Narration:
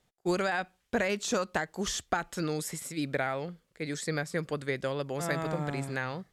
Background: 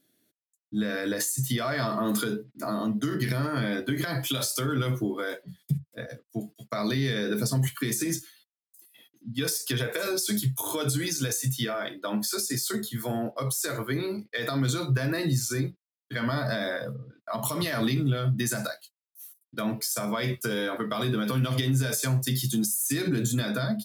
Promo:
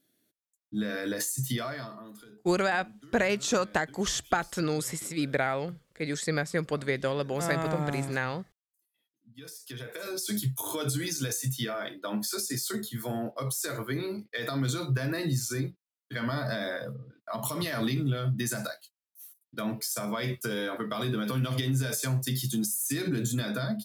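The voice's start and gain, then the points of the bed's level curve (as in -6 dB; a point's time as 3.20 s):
2.20 s, +3.0 dB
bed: 1.59 s -3 dB
2.16 s -23.5 dB
9.08 s -23.5 dB
10.38 s -3 dB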